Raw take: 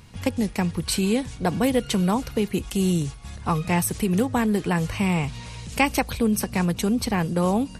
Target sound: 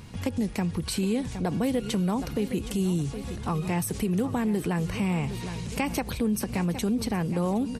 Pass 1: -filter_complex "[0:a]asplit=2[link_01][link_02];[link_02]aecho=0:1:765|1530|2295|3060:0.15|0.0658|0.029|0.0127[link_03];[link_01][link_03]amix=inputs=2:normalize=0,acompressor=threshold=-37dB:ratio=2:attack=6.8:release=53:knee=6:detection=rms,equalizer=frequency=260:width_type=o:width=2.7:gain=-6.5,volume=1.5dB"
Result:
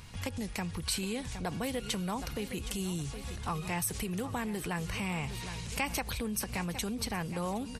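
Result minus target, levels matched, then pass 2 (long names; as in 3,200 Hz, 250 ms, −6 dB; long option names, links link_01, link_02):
250 Hz band −3.5 dB
-filter_complex "[0:a]asplit=2[link_01][link_02];[link_02]aecho=0:1:765|1530|2295|3060:0.15|0.0658|0.029|0.0127[link_03];[link_01][link_03]amix=inputs=2:normalize=0,acompressor=threshold=-37dB:ratio=2:attack=6.8:release=53:knee=6:detection=rms,equalizer=frequency=260:width_type=o:width=2.7:gain=4.5,volume=1.5dB"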